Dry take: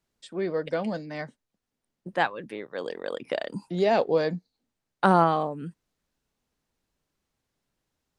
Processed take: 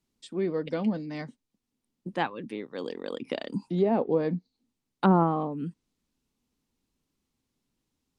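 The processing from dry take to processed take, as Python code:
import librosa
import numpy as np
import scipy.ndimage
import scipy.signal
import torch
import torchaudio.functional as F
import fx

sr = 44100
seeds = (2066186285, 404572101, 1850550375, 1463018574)

y = fx.graphic_eq_15(x, sr, hz=(250, 630, 1600), db=(7, -7, -7))
y = fx.env_lowpass_down(y, sr, base_hz=1200.0, full_db=-19.5)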